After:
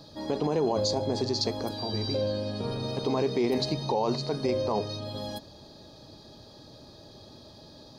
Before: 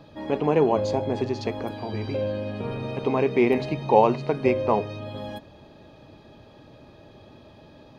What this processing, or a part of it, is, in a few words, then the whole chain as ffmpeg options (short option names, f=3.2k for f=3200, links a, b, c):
over-bright horn tweeter: -af "highshelf=f=3.4k:t=q:w=3:g=9.5,alimiter=limit=-16dB:level=0:latency=1:release=27,volume=-1.5dB"